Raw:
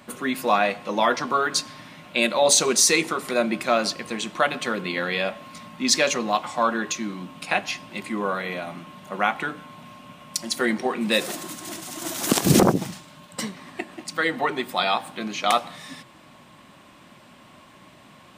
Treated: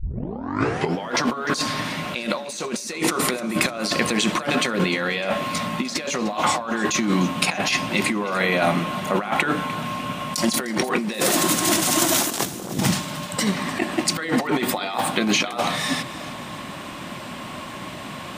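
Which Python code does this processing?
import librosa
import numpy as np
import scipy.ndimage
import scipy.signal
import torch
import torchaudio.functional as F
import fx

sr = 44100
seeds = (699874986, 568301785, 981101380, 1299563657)

y = fx.tape_start_head(x, sr, length_s=1.11)
y = fx.over_compress(y, sr, threshold_db=-33.0, ratio=-1.0)
y = fx.echo_split(y, sr, split_hz=340.0, low_ms=120, high_ms=302, feedback_pct=52, wet_db=-16)
y = y * librosa.db_to_amplitude(8.5)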